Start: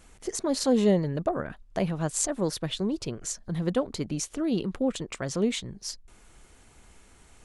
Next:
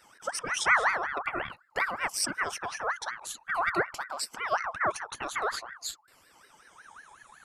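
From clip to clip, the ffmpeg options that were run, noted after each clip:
-af "afftfilt=real='re*pow(10,20/40*sin(2*PI*(1.2*log(max(b,1)*sr/1024/100)/log(2)-(0.47)*(pts-256)/sr)))':imag='im*pow(10,20/40*sin(2*PI*(1.2*log(max(b,1)*sr/1024/100)/log(2)-(0.47)*(pts-256)/sr)))':win_size=1024:overlap=0.75,bandreject=f=178:t=h:w=4,bandreject=f=356:t=h:w=4,aeval=exprs='val(0)*sin(2*PI*1300*n/s+1300*0.35/5.4*sin(2*PI*5.4*n/s))':c=same,volume=0.668"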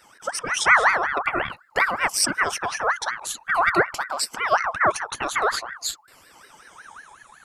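-af "dynaudnorm=f=120:g=11:m=1.5,volume=1.78"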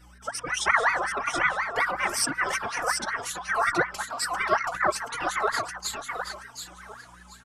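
-filter_complex "[0:a]aeval=exprs='val(0)+0.00398*(sin(2*PI*60*n/s)+sin(2*PI*2*60*n/s)/2+sin(2*PI*3*60*n/s)/3+sin(2*PI*4*60*n/s)/4+sin(2*PI*5*60*n/s)/5)':c=same,asplit=2[s0][s1];[s1]aecho=0:1:728|1456|2184:0.531|0.106|0.0212[s2];[s0][s2]amix=inputs=2:normalize=0,asplit=2[s3][s4];[s4]adelay=3.6,afreqshift=2.1[s5];[s3][s5]amix=inputs=2:normalize=1,volume=0.794"

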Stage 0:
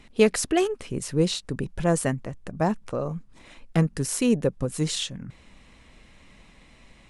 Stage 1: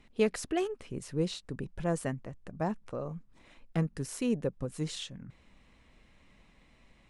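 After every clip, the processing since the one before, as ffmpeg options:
-af "highshelf=f=4600:g=-6,volume=0.376"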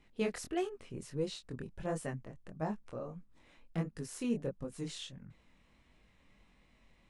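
-af "flanger=delay=19:depth=6.6:speed=1.5,volume=0.794"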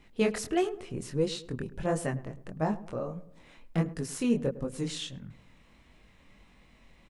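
-filter_complex "[0:a]asplit=2[s0][s1];[s1]adelay=105,lowpass=f=1200:p=1,volume=0.168,asplit=2[s2][s3];[s3]adelay=105,lowpass=f=1200:p=1,volume=0.46,asplit=2[s4][s5];[s5]adelay=105,lowpass=f=1200:p=1,volume=0.46,asplit=2[s6][s7];[s7]adelay=105,lowpass=f=1200:p=1,volume=0.46[s8];[s0][s2][s4][s6][s8]amix=inputs=5:normalize=0,volume=2.37"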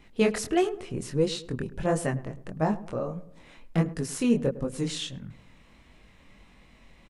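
-af "aresample=32000,aresample=44100,volume=1.5"

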